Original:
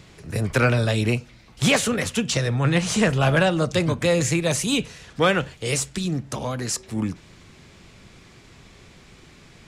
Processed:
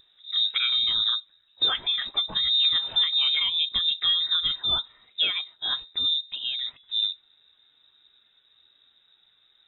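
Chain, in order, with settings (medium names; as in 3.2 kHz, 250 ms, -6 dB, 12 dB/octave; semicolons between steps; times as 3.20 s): compression 5:1, threshold -21 dBFS, peak gain reduction 7 dB; frequency inversion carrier 3.8 kHz; spectral contrast expander 1.5:1; trim -2.5 dB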